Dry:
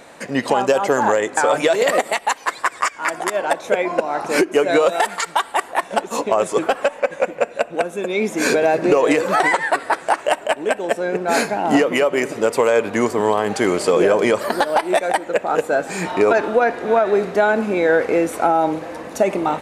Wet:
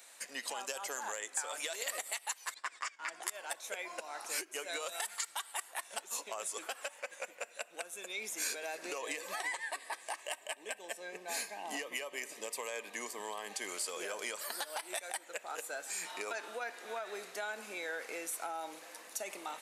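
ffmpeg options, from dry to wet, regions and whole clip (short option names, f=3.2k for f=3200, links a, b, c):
-filter_complex "[0:a]asettb=1/sr,asplit=3[a][b][c];[a]atrim=end=2.544[d];[b]atrim=start=2.54:end=3.23,asetpts=PTS-STARTPTS,afade=t=in:d=0.004:c=qsin,afade=t=out:st=0.686:d=0.004:c=qsin,agate=range=-11dB:threshold=-38dB:ratio=16:release=100:detection=peak,highpass=100,lowpass=4.8k,equalizer=f=130:w=0.51:g=9.5[e];[c]atrim=start=3.226[f];[d][e]acrossfade=d=0.004:c1=hsin:c2=qsin[g];[g][f]acrossfade=d=0.004:c1=qsin:c2=hsin,asettb=1/sr,asplit=3[h][i][j];[h]atrim=end=8.984[k];[i]atrim=start=8.98:end=13.69,asetpts=PTS-STARTPTS,afade=t=in:d=0.004:c=qsin,afade=t=out:st=4.706:d=0.004:c=qsin,asuperstop=centerf=1400:order=8:qfactor=5.3,bass=f=250:g=4,treble=f=4k:g=-4[l];[j]atrim=start=13.686[m];[k][l]acrossfade=d=0.004:c1=hsin:c2=qsin[n];[n][m]acrossfade=d=0.004:c1=qsin:c2=hsin,highpass=f=170:w=0.5412,highpass=f=170:w=1.3066,aderivative,acompressor=threshold=-35dB:ratio=2,volume=-3dB"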